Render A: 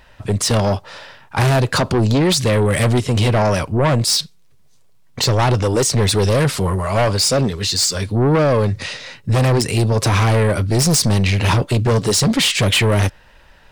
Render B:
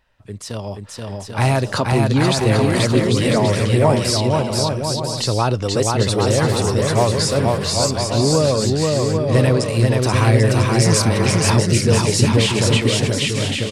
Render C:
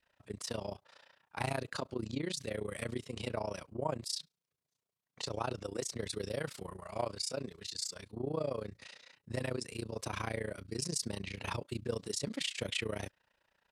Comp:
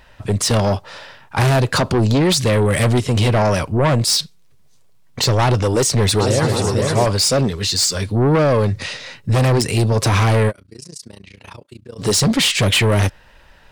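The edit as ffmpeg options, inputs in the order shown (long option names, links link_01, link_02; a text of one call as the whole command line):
ffmpeg -i take0.wav -i take1.wav -i take2.wav -filter_complex "[0:a]asplit=3[link_01][link_02][link_03];[link_01]atrim=end=6.202[link_04];[1:a]atrim=start=6.198:end=7.062[link_05];[link_02]atrim=start=7.058:end=10.52[link_06];[2:a]atrim=start=10.48:end=12.02[link_07];[link_03]atrim=start=11.98[link_08];[link_04][link_05]acrossfade=duration=0.004:curve1=hsin:curve2=hsin[link_09];[link_09][link_06]acrossfade=duration=0.004:curve1=hsin:curve2=hsin[link_10];[link_10][link_07]acrossfade=duration=0.04:curve1=tri:curve2=tri[link_11];[link_11][link_08]acrossfade=duration=0.04:curve1=tri:curve2=tri" out.wav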